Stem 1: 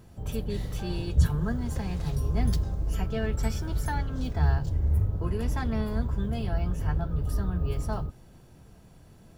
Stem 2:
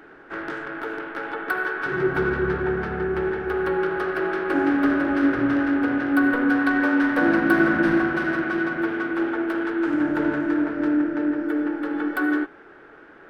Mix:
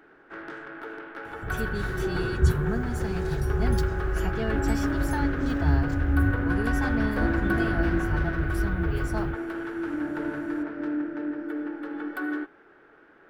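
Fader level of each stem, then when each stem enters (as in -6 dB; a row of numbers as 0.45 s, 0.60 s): +0.5 dB, -8.0 dB; 1.25 s, 0.00 s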